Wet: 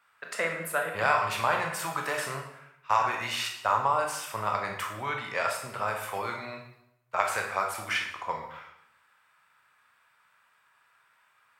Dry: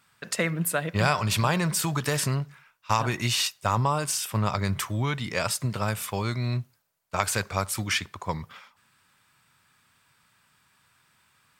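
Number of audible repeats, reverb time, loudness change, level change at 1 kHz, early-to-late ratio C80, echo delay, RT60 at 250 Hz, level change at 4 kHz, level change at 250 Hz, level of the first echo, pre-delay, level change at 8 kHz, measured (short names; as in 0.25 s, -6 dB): none, 0.75 s, -2.5 dB, +2.0 dB, 8.5 dB, none, 0.85 s, -6.5 dB, -14.0 dB, none, 16 ms, -9.5 dB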